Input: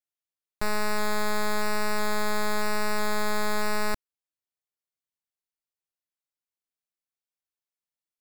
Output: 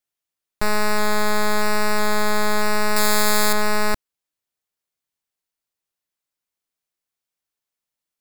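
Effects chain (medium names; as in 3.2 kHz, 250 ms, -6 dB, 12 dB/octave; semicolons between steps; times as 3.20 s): 2.96–3.53 s: treble shelf 3.7 kHz +11 dB; trim +7 dB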